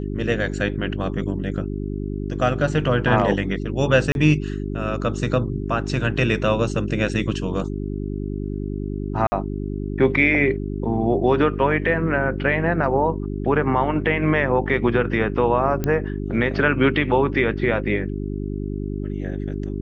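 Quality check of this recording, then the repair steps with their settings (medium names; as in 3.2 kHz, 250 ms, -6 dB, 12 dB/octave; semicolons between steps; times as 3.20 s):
hum 50 Hz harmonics 8 -27 dBFS
4.12–4.15 s: dropout 31 ms
9.27–9.32 s: dropout 50 ms
15.84 s: pop -10 dBFS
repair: de-click; de-hum 50 Hz, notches 8; interpolate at 4.12 s, 31 ms; interpolate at 9.27 s, 50 ms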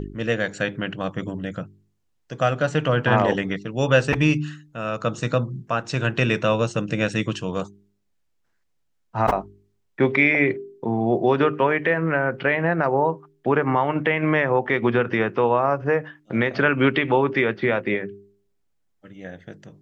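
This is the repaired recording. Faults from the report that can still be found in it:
nothing left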